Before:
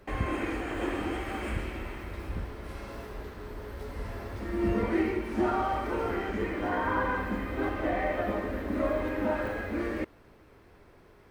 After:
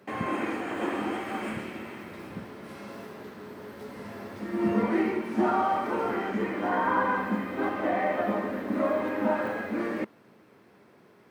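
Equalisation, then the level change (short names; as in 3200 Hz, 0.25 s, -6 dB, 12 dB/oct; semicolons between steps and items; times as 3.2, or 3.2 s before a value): HPF 130 Hz 24 dB/oct; dynamic EQ 930 Hz, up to +5 dB, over -41 dBFS, Q 1.1; bell 210 Hz +7 dB 0.33 oct; 0.0 dB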